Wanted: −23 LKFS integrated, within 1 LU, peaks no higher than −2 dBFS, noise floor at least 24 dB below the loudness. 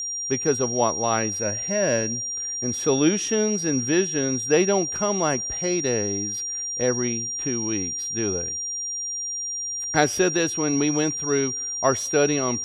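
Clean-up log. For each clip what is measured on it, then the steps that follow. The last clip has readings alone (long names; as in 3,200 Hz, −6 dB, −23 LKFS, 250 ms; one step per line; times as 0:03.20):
interfering tone 5,700 Hz; level of the tone −27 dBFS; integrated loudness −23.0 LKFS; sample peak −4.0 dBFS; target loudness −23.0 LKFS
→ notch filter 5,700 Hz, Q 30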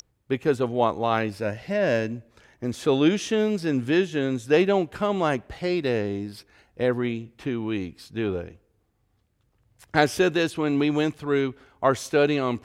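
interfering tone none found; integrated loudness −25.0 LKFS; sample peak −4.5 dBFS; target loudness −23.0 LKFS
→ level +2 dB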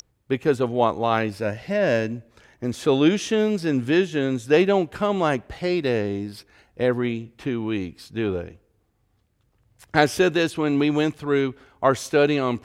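integrated loudness −23.0 LKFS; sample peak −2.5 dBFS; background noise floor −67 dBFS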